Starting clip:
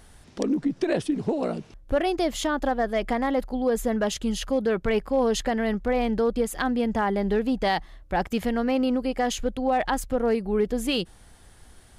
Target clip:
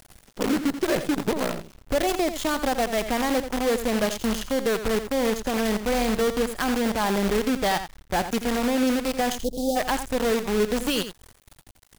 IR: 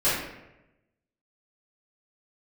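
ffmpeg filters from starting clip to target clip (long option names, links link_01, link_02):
-filter_complex "[0:a]asettb=1/sr,asplit=3[link_01][link_02][link_03];[link_01]atrim=end=4.874[link_04];[link_02]atrim=start=4.87:end=5.54,asetpts=PTS-STARTPTS,afade=type=in:duration=0.004:curve=qsin,afade=type=out:start_time=0.666:duration=0.004:curve=qsin,equalizer=frequency=2400:width=0.62:gain=-13.5[link_05];[link_03]atrim=start=5.536[link_06];[link_04][link_05]acrossfade=duration=0.004:curve1=hsin:curve2=qsin[link_07];[link_07][link_06]acrossfade=duration=0.004:curve1=qsin:curve2=hsin,acrusher=bits=5:dc=4:mix=0:aa=0.000001,asplit=3[link_08][link_09][link_10];[link_08]afade=type=out:start_time=9.35:duration=0.02[link_11];[link_09]asuperstop=centerf=1600:order=8:qfactor=0.51,afade=type=in:start_time=9.35:duration=0.02,afade=type=out:start_time=9.75:duration=0.02[link_12];[link_10]afade=type=in:start_time=9.75:duration=0.02[link_13];[link_11][link_12][link_13]amix=inputs=3:normalize=0,aecho=1:1:85:0.299"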